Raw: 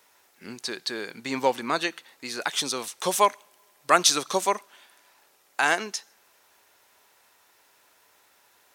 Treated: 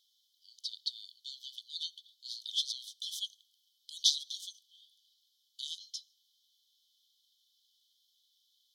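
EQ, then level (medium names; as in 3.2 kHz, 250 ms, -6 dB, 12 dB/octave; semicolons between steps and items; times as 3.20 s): brick-wall FIR high-pass 3 kHz; distance through air 310 m; treble shelf 5.8 kHz +12 dB; +2.0 dB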